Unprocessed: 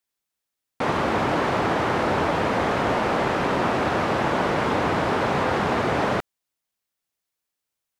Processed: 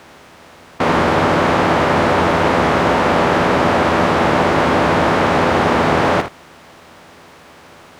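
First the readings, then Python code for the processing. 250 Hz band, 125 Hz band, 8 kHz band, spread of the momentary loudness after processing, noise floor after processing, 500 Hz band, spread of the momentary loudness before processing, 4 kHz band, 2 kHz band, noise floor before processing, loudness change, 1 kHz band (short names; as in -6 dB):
+8.5 dB, +8.0 dB, +8.5 dB, 1 LU, -43 dBFS, +8.5 dB, 1 LU, +8.5 dB, +8.5 dB, -84 dBFS, +8.5 dB, +8.0 dB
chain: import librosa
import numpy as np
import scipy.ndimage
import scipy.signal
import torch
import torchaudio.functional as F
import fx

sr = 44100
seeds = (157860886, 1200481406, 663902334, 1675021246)

p1 = fx.bin_compress(x, sr, power=0.4)
p2 = p1 + fx.room_early_taps(p1, sr, ms=(12, 57, 79), db=(-5.0, -9.5, -13.0), dry=0)
y = p2 * 10.0 ** (2.5 / 20.0)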